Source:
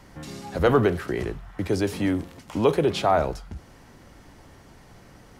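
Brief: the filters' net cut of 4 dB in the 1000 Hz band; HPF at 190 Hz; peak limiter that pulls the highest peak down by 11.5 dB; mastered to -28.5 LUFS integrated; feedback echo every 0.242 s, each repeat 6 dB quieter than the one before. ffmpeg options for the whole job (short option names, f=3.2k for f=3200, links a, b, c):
-af "highpass=190,equalizer=f=1k:t=o:g=-6,alimiter=limit=-21dB:level=0:latency=1,aecho=1:1:242|484|726|968|1210|1452:0.501|0.251|0.125|0.0626|0.0313|0.0157,volume=2.5dB"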